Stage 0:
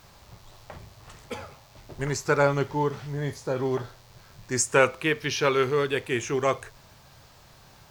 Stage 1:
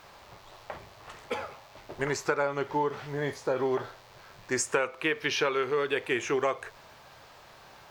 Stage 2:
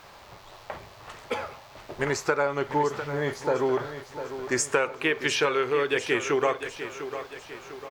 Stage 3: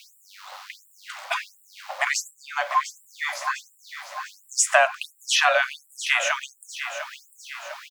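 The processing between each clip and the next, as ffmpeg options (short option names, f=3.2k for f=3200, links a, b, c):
-af "bass=f=250:g=-13,treble=f=4k:g=-9,acompressor=threshold=-28dB:ratio=8,volume=4.5dB"
-af "aecho=1:1:700|1400|2100|2800|3500:0.282|0.135|0.0649|0.0312|0.015,volume=3dB"
-af "afreqshift=170,afftfilt=real='re*gte(b*sr/1024,510*pow(7400/510,0.5+0.5*sin(2*PI*1.4*pts/sr)))':imag='im*gte(b*sr/1024,510*pow(7400/510,0.5+0.5*sin(2*PI*1.4*pts/sr)))':win_size=1024:overlap=0.75,volume=7.5dB"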